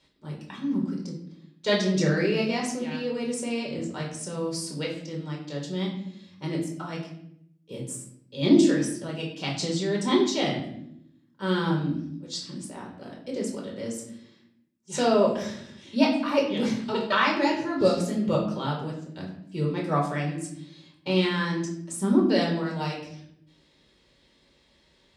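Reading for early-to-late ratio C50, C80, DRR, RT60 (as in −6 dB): 5.5 dB, 9.0 dB, −3.0 dB, 0.75 s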